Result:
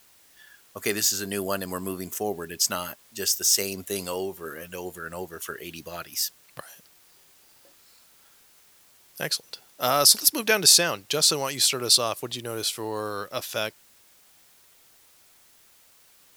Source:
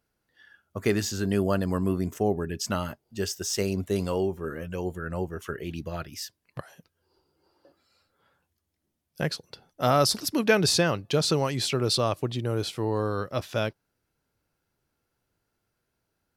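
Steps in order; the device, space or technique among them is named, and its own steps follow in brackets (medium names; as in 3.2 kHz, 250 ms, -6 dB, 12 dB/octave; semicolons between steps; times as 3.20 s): turntable without a phono preamp (RIAA curve recording; white noise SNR 29 dB)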